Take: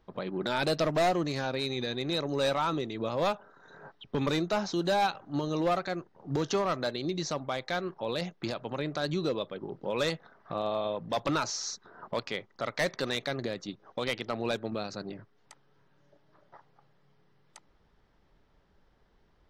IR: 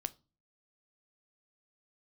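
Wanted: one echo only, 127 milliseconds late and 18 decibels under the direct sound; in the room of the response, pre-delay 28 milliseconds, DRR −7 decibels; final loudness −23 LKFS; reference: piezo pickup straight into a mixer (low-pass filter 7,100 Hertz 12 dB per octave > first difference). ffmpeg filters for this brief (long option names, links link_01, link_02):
-filter_complex "[0:a]aecho=1:1:127:0.126,asplit=2[link_01][link_02];[1:a]atrim=start_sample=2205,adelay=28[link_03];[link_02][link_03]afir=irnorm=-1:irlink=0,volume=8dB[link_04];[link_01][link_04]amix=inputs=2:normalize=0,lowpass=7100,aderivative,volume=13.5dB"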